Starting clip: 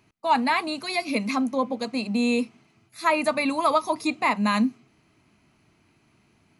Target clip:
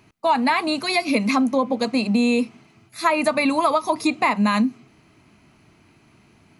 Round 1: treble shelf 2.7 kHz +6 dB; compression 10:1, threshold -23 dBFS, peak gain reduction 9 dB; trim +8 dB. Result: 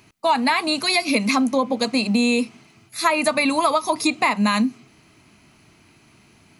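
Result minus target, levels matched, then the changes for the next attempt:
4 kHz band +4.0 dB
change: treble shelf 2.7 kHz -2 dB

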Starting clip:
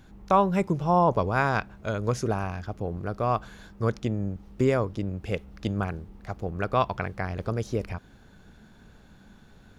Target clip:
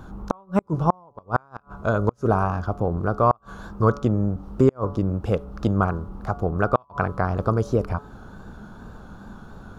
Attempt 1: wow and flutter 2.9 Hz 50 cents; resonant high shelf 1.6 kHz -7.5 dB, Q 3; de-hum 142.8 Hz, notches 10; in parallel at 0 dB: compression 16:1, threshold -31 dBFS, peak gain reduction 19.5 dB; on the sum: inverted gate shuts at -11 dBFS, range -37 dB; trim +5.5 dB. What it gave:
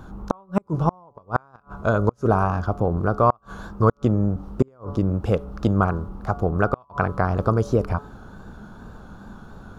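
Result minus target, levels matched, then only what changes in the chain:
compression: peak gain reduction -7 dB
change: compression 16:1, threshold -38.5 dBFS, peak gain reduction 26.5 dB

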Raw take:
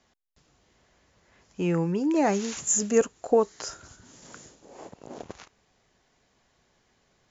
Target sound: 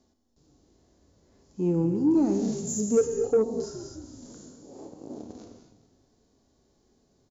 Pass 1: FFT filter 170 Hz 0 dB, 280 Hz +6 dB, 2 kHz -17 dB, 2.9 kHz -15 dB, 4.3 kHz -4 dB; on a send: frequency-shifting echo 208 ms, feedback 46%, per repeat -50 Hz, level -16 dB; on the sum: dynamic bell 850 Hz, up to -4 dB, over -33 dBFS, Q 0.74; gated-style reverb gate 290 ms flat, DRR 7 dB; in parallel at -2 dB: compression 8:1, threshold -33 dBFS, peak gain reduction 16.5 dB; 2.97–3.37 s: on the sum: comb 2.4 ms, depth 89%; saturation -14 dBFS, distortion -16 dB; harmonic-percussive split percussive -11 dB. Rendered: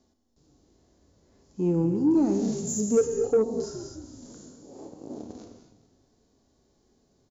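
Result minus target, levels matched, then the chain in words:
compression: peak gain reduction -5.5 dB
FFT filter 170 Hz 0 dB, 280 Hz +6 dB, 2 kHz -17 dB, 2.9 kHz -15 dB, 4.3 kHz -4 dB; on a send: frequency-shifting echo 208 ms, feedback 46%, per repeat -50 Hz, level -16 dB; on the sum: dynamic bell 850 Hz, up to -4 dB, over -33 dBFS, Q 0.74; gated-style reverb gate 290 ms flat, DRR 7 dB; in parallel at -2 dB: compression 8:1, threshold -39 dBFS, peak gain reduction 22 dB; 2.97–3.37 s: on the sum: comb 2.4 ms, depth 89%; saturation -14 dBFS, distortion -16 dB; harmonic-percussive split percussive -11 dB

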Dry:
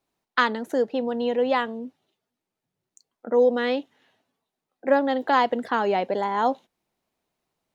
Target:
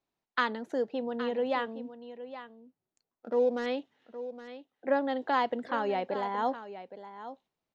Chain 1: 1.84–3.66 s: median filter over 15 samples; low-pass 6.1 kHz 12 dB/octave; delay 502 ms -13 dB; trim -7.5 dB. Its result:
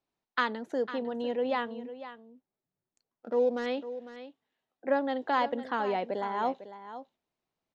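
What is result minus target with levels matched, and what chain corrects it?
echo 315 ms early
1.84–3.66 s: median filter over 15 samples; low-pass 6.1 kHz 12 dB/octave; delay 817 ms -13 dB; trim -7.5 dB

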